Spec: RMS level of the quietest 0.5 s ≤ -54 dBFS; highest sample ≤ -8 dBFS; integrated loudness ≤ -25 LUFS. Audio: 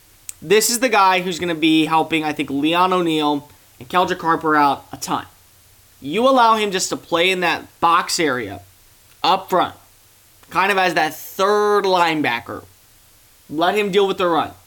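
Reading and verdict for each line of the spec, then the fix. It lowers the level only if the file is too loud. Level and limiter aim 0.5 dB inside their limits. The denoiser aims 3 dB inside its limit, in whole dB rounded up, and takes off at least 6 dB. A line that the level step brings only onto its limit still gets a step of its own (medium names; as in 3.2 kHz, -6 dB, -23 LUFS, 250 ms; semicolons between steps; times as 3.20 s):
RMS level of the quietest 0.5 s -51 dBFS: fail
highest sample -5.0 dBFS: fail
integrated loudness -17.5 LUFS: fail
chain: trim -8 dB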